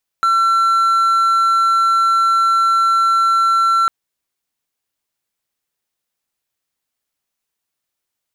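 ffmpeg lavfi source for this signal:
-f lavfi -i "aevalsrc='0.355*(1-4*abs(mod(1350*t+0.25,1)-0.5))':d=3.65:s=44100"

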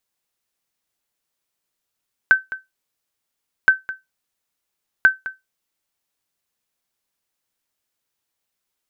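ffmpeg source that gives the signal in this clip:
-f lavfi -i "aevalsrc='0.668*(sin(2*PI*1540*mod(t,1.37))*exp(-6.91*mod(t,1.37)/0.18)+0.158*sin(2*PI*1540*max(mod(t,1.37)-0.21,0))*exp(-6.91*max(mod(t,1.37)-0.21,0)/0.18))':d=4.11:s=44100"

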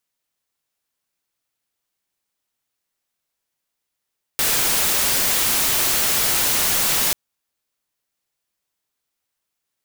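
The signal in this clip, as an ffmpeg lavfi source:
-f lavfi -i "anoisesrc=c=white:a=0.194:d=2.74:r=44100:seed=1"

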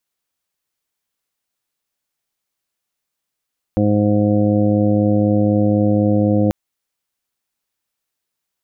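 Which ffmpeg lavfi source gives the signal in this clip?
-f lavfi -i "aevalsrc='0.126*sin(2*PI*104*t)+0.15*sin(2*PI*208*t)+0.126*sin(2*PI*312*t)+0.0282*sin(2*PI*416*t)+0.106*sin(2*PI*520*t)+0.0224*sin(2*PI*624*t)+0.0316*sin(2*PI*728*t)':d=2.74:s=44100"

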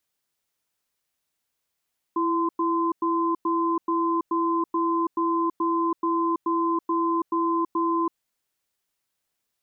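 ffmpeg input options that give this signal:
-f lavfi -i "aevalsrc='0.0668*(sin(2*PI*333*t)+sin(2*PI*1030*t))*clip(min(mod(t,0.43),0.33-mod(t,0.43))/0.005,0,1)':d=5.93:s=44100"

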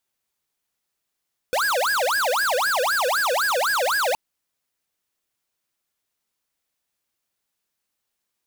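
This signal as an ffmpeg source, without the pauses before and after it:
-f lavfi -i "aevalsrc='0.0841*(2*lt(mod((1078.5*t-591.5/(2*PI*3.9)*sin(2*PI*3.9*t)),1),0.5)-1)':d=2.62:s=44100"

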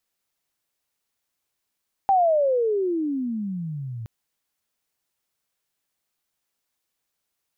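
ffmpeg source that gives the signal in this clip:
-f lavfi -i "aevalsrc='pow(10,(-14.5-16*t/1.97)/20)*sin(2*PI*799*1.97/(-34.5*log(2)/12)*(exp(-34.5*log(2)/12*t/1.97)-1))':d=1.97:s=44100"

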